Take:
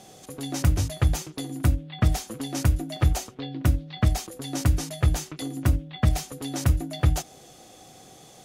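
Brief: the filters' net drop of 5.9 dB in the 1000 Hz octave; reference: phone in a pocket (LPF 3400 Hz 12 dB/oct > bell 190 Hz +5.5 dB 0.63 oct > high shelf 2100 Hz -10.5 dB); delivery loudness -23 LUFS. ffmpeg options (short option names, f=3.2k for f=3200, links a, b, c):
-af "lowpass=3.4k,equalizer=f=190:t=o:w=0.63:g=5.5,equalizer=f=1k:t=o:g=-6.5,highshelf=f=2.1k:g=-10.5,volume=3dB"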